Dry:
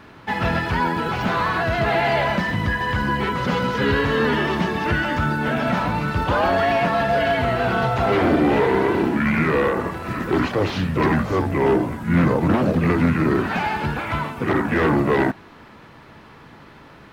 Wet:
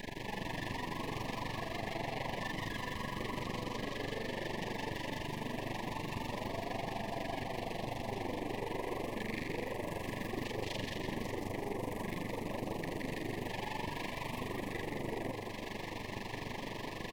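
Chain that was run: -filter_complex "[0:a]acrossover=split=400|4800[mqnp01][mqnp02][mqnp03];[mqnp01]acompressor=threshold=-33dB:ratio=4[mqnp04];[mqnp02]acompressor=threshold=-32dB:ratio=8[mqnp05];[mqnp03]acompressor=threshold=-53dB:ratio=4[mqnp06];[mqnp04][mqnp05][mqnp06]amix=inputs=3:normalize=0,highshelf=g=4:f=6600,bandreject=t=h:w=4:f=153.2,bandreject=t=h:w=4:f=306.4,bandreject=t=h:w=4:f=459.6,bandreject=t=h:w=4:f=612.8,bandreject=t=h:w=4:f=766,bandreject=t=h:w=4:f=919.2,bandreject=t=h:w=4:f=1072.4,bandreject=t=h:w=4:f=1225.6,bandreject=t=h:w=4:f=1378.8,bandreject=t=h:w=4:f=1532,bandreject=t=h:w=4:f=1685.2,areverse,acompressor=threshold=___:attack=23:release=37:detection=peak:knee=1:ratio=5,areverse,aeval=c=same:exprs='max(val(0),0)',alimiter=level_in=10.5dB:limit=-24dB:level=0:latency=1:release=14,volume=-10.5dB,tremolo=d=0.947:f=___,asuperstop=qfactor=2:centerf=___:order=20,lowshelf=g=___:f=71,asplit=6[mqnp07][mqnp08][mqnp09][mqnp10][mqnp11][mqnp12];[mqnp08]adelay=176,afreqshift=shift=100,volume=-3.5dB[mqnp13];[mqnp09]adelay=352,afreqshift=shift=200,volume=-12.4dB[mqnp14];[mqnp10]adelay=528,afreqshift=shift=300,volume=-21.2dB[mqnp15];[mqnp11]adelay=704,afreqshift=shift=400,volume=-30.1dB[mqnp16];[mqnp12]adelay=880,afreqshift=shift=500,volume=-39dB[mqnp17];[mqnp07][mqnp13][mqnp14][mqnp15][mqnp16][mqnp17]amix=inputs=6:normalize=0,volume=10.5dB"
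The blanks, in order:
-45dB, 24, 1300, -5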